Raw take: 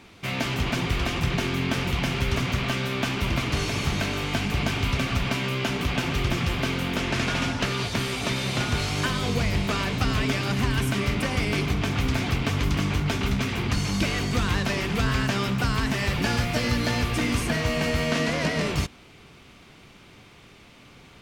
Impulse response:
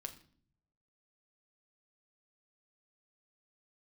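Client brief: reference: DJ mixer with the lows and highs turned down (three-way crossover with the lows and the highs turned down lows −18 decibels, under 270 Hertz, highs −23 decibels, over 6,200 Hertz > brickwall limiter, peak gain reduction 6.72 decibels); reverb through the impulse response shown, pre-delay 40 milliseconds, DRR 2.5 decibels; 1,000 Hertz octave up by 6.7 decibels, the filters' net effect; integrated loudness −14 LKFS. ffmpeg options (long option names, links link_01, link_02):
-filter_complex "[0:a]equalizer=frequency=1000:width_type=o:gain=8.5,asplit=2[link_01][link_02];[1:a]atrim=start_sample=2205,adelay=40[link_03];[link_02][link_03]afir=irnorm=-1:irlink=0,volume=1dB[link_04];[link_01][link_04]amix=inputs=2:normalize=0,acrossover=split=270 6200:gain=0.126 1 0.0708[link_05][link_06][link_07];[link_05][link_06][link_07]amix=inputs=3:normalize=0,volume=11.5dB,alimiter=limit=-5dB:level=0:latency=1"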